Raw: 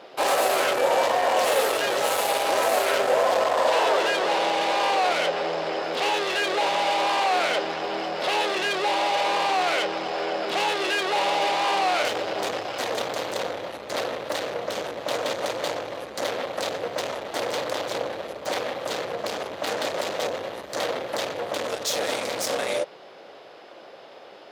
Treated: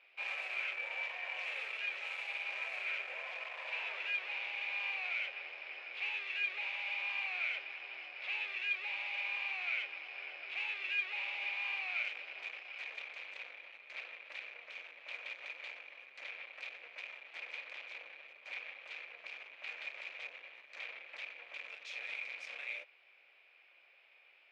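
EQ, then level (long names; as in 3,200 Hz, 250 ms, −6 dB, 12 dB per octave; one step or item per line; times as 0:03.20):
resonant band-pass 2,400 Hz, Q 11
high-frequency loss of the air 50 metres
0.0 dB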